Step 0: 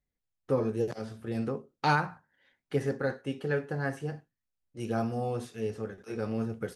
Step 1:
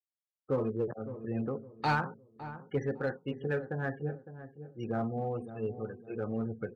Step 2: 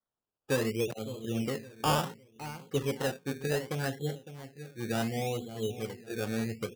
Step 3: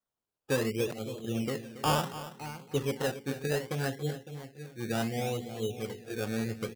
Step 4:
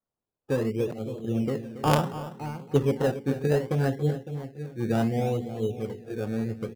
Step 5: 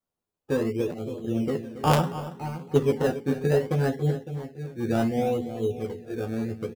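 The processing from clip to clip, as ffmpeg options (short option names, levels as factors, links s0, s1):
-filter_complex "[0:a]afftfilt=real='re*gte(hypot(re,im),0.0112)':imag='im*gte(hypot(re,im),0.0112)':win_size=1024:overlap=0.75,asplit=2[s0][s1];[s1]asoftclip=type=hard:threshold=0.0562,volume=0.562[s2];[s0][s2]amix=inputs=2:normalize=0,asplit=2[s3][s4];[s4]adelay=558,lowpass=f=880:p=1,volume=0.266,asplit=2[s5][s6];[s6]adelay=558,lowpass=f=880:p=1,volume=0.35,asplit=2[s7][s8];[s8]adelay=558,lowpass=f=880:p=1,volume=0.35,asplit=2[s9][s10];[s10]adelay=558,lowpass=f=880:p=1,volume=0.35[s11];[s3][s5][s7][s9][s11]amix=inputs=5:normalize=0,volume=0.501"
-af "acrusher=samples=17:mix=1:aa=0.000001:lfo=1:lforange=10.2:lforate=0.68,volume=1.19"
-af "aecho=1:1:279:0.2"
-af "tiltshelf=f=1300:g=7,dynaudnorm=f=300:g=11:m=1.68,aeval=exprs='0.447*(cos(1*acos(clip(val(0)/0.447,-1,1)))-cos(1*PI/2))+0.158*(cos(3*acos(clip(val(0)/0.447,-1,1)))-cos(3*PI/2))+0.0562*(cos(5*acos(clip(val(0)/0.447,-1,1)))-cos(5*PI/2))+0.00708*(cos(7*acos(clip(val(0)/0.447,-1,1)))-cos(7*PI/2))':c=same,volume=1.68"
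-filter_complex "[0:a]asplit=2[s0][s1];[s1]adelay=12,volume=0.562[s2];[s0][s2]amix=inputs=2:normalize=0"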